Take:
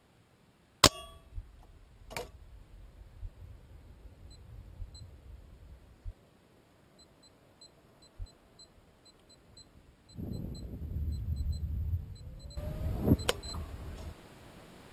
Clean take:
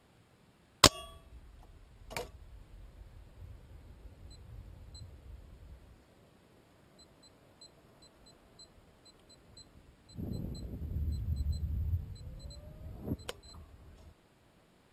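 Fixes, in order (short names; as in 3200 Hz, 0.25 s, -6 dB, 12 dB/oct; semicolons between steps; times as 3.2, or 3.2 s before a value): clip repair -7 dBFS; de-plosive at 1.34/3.21/4.78/6.04/8.18/11.41; gain 0 dB, from 12.57 s -12 dB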